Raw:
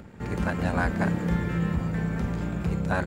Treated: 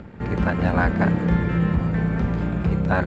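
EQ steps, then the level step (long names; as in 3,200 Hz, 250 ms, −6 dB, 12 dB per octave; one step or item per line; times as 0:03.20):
high-frequency loss of the air 160 metres
+6.0 dB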